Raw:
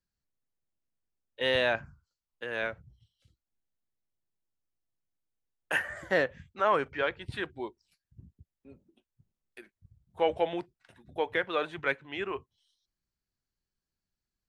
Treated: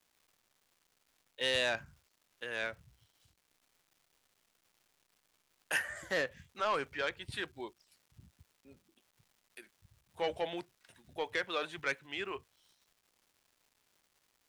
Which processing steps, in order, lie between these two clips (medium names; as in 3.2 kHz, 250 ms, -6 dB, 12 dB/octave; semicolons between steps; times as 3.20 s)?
saturation -19 dBFS, distortion -16 dB; peaking EQ 9.5 kHz +13 dB 2.8 oct; crackle 470 per s -52 dBFS; trim -6.5 dB